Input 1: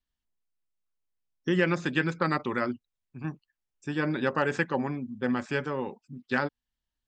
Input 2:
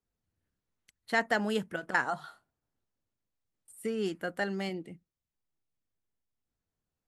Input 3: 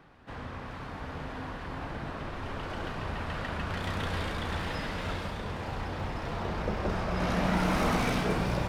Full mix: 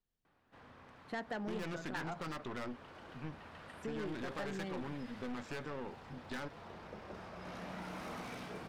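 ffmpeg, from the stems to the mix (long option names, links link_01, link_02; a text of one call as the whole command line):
ffmpeg -i stem1.wav -i stem2.wav -i stem3.wav -filter_complex "[0:a]aeval=exprs='(tanh(39.8*val(0)+0.75)-tanh(0.75))/39.8':channel_layout=same,volume=-2dB[link_01];[1:a]lowpass=frequency=1400:poles=1,volume=-3.5dB[link_02];[2:a]highpass=frequency=180:poles=1,adelay=250,volume=-15.5dB[link_03];[link_01][link_02][link_03]amix=inputs=3:normalize=0,asoftclip=type=tanh:threshold=-30dB,acompressor=threshold=-39dB:ratio=2.5" out.wav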